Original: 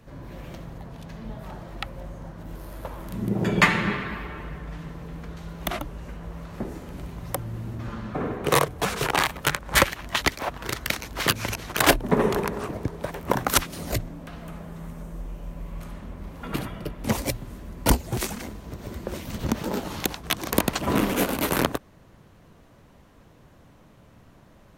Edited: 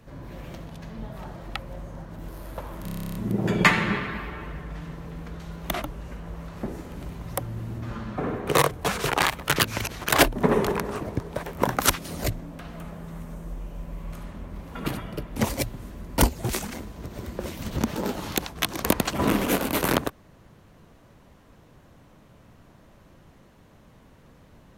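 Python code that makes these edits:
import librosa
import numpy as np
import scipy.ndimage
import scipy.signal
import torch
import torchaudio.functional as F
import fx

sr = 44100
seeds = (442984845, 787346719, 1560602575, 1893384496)

y = fx.edit(x, sr, fx.cut(start_s=0.66, length_s=0.27),
    fx.stutter(start_s=3.12, slice_s=0.03, count=11),
    fx.cut(start_s=9.53, length_s=1.71), tone=tone)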